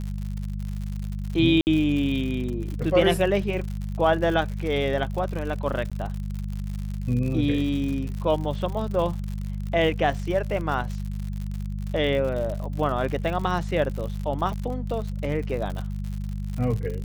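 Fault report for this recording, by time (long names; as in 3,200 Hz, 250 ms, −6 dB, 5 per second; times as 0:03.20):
surface crackle 94 per second −31 dBFS
mains hum 50 Hz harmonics 4 −30 dBFS
0:01.61–0:01.67: drop-out 59 ms
0:05.90–0:05.92: drop-out 16 ms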